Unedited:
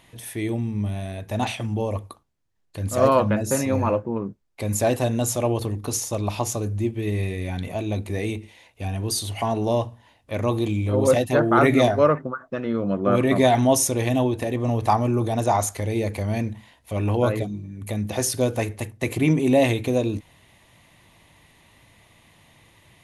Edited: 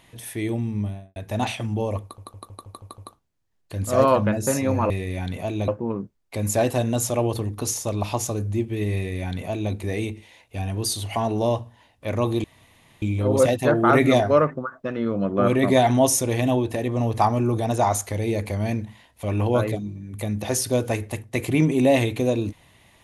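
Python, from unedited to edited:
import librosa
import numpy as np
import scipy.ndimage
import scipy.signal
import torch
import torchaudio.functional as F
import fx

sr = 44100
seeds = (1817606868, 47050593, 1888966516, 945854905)

y = fx.studio_fade_out(x, sr, start_s=0.76, length_s=0.4)
y = fx.edit(y, sr, fx.stutter(start_s=2.02, slice_s=0.16, count=7),
    fx.duplicate(start_s=7.21, length_s=0.78, to_s=3.94),
    fx.insert_room_tone(at_s=10.7, length_s=0.58), tone=tone)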